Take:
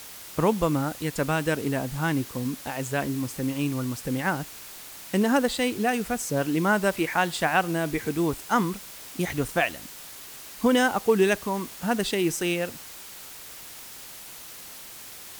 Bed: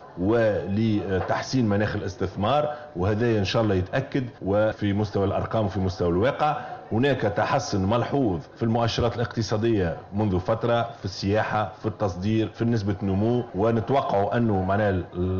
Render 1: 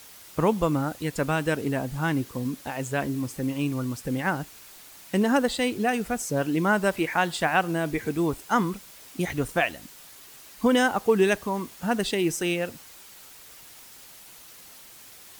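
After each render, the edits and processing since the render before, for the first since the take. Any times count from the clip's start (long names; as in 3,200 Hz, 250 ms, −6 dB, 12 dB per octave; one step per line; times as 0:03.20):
broadband denoise 6 dB, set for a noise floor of −43 dBFS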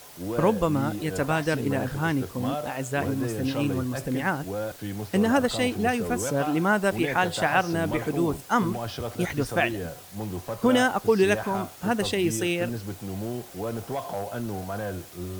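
mix in bed −9.5 dB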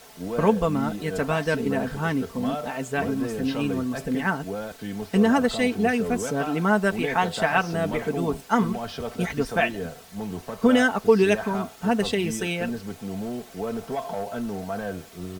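high-shelf EQ 7,800 Hz −8 dB
comb filter 4.5 ms, depth 61%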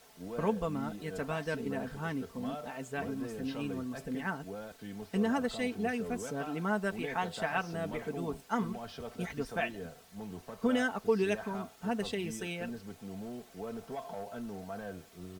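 level −11 dB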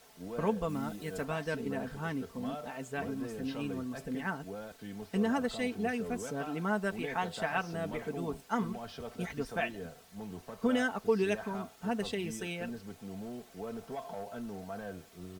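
0:00.68–0:01.23: high-shelf EQ 5,100 Hz → 8,500 Hz +7 dB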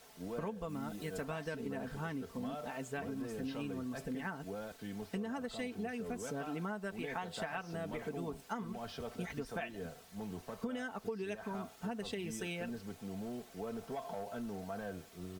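downward compressor 12 to 1, threshold −36 dBFS, peak gain reduction 14 dB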